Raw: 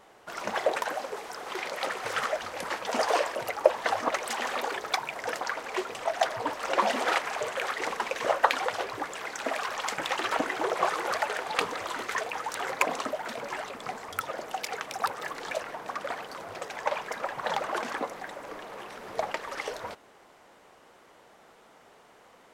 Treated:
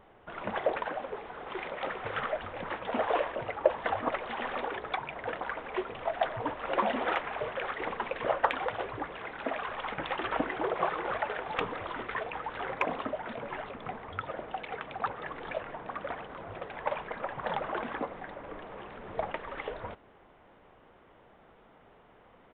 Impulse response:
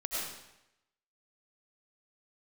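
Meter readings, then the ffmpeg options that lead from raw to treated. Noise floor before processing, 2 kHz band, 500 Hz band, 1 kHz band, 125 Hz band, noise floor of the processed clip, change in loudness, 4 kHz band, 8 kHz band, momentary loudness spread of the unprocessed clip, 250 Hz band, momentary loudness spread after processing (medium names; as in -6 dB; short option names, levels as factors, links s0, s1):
-57 dBFS, -4.5 dB, -2.5 dB, -3.5 dB, +5.0 dB, -59 dBFS, -3.5 dB, -8.5 dB, under -35 dB, 11 LU, +0.5 dB, 10 LU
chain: -af "aemphasis=mode=reproduction:type=bsi,aresample=8000,aresample=44100,acontrast=29,volume=0.376"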